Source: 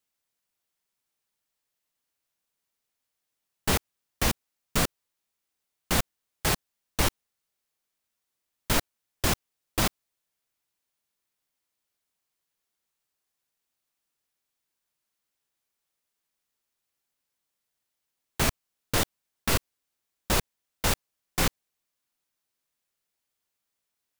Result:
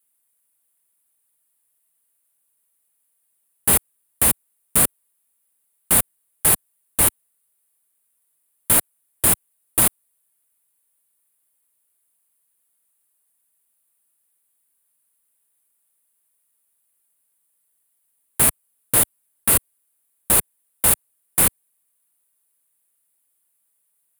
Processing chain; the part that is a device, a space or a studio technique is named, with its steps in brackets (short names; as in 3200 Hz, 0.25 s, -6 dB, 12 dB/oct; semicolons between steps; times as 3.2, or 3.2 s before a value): budget condenser microphone (HPF 83 Hz 6 dB/oct; resonant high shelf 7600 Hz +10.5 dB, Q 3); gain +2.5 dB